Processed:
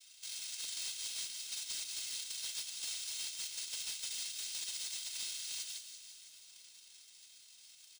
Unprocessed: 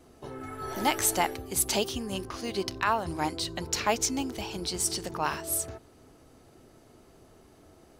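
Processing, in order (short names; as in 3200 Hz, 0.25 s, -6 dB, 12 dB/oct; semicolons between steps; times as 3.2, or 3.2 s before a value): soft clip -26 dBFS, distortion -9 dB; noise vocoder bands 1; comb 1.9 ms, depth 92%; compressor 6:1, threshold -33 dBFS, peak gain reduction 10 dB; ladder high-pass 2700 Hz, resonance 25%; careless resampling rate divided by 3×, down none, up hold; overloaded stage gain 35 dB; thin delay 0.188 s, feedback 45%, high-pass 3800 Hz, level -10 dB; lo-fi delay 0.165 s, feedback 80%, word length 11-bit, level -14.5 dB; gain +1 dB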